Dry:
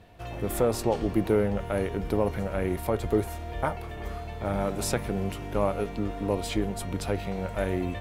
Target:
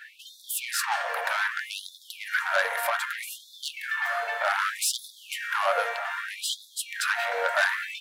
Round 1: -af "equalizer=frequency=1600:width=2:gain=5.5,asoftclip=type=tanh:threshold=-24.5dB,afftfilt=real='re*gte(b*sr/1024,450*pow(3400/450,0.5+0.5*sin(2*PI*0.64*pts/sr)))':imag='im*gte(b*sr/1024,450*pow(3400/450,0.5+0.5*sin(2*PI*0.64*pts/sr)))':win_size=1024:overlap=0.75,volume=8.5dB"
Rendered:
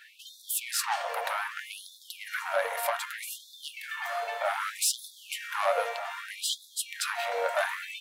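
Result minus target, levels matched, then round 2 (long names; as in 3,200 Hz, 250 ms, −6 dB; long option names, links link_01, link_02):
2,000 Hz band −4.0 dB
-af "equalizer=frequency=1600:width=2:gain=16.5,asoftclip=type=tanh:threshold=-24.5dB,afftfilt=real='re*gte(b*sr/1024,450*pow(3400/450,0.5+0.5*sin(2*PI*0.64*pts/sr)))':imag='im*gte(b*sr/1024,450*pow(3400/450,0.5+0.5*sin(2*PI*0.64*pts/sr)))':win_size=1024:overlap=0.75,volume=8.5dB"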